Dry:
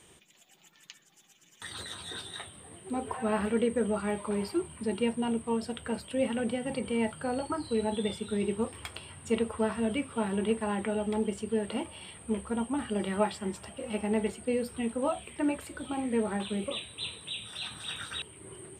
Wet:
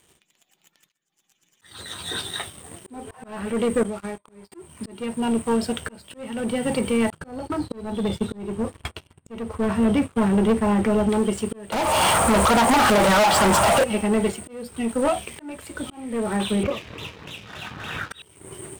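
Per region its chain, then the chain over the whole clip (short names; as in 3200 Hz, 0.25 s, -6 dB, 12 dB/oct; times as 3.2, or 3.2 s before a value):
3.83–4.52 notch 2900 Hz, Q 7 + expander -28 dBFS + compressor 10:1, threshold -37 dBFS
7.1–11.09 expander -39 dBFS + tilt -2 dB/oct
11.72–13.84 band shelf 920 Hz +14.5 dB + compressor 3:1, threshold -33 dBFS + sample leveller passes 5
16.63–18.11 LPF 2300 Hz 24 dB/oct + backwards sustainer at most 31 dB/s
whole clip: sample leveller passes 3; auto swell 0.538 s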